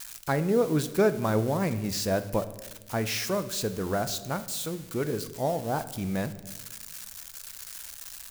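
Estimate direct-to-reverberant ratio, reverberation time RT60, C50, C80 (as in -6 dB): 10.5 dB, 1.1 s, 14.0 dB, 16.0 dB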